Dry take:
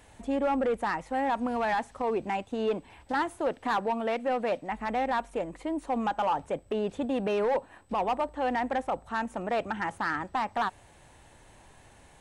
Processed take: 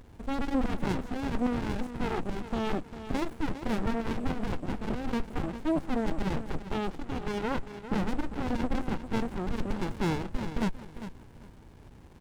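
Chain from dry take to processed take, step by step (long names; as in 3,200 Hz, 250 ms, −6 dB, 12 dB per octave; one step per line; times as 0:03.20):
0:06.91–0:07.58: band-pass filter 590–7,100 Hz
on a send: repeating echo 400 ms, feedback 24%, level −11.5 dB
on the sum: windowed peak hold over 65 samples
level +6 dB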